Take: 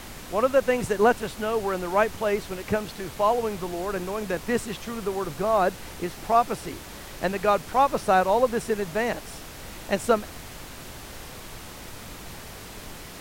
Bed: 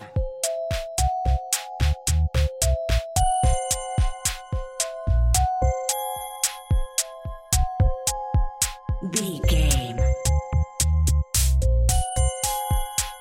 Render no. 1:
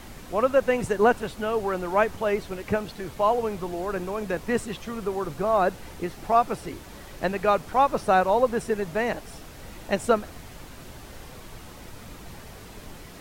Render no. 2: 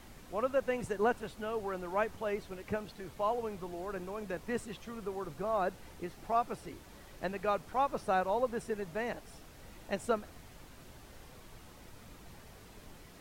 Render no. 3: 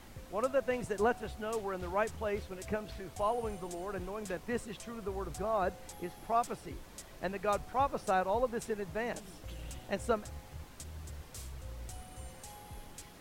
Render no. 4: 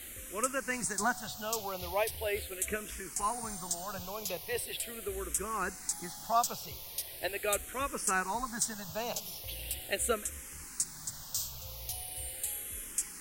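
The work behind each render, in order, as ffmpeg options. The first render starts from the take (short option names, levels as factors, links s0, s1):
-af "afftdn=nr=6:nf=-41"
-af "volume=0.299"
-filter_complex "[1:a]volume=0.0501[s0];[0:a][s0]amix=inputs=2:normalize=0"
-filter_complex "[0:a]crystalizer=i=7.5:c=0,asplit=2[s0][s1];[s1]afreqshift=-0.4[s2];[s0][s2]amix=inputs=2:normalize=1"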